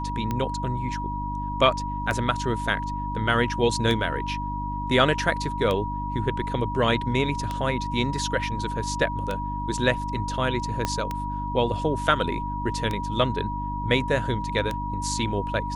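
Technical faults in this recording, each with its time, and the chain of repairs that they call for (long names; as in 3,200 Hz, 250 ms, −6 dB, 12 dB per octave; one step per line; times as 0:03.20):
mains hum 50 Hz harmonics 6 −32 dBFS
scratch tick 33 1/3 rpm −14 dBFS
whistle 960 Hz −30 dBFS
0:10.85: click −10 dBFS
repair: click removal
hum removal 50 Hz, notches 6
notch filter 960 Hz, Q 30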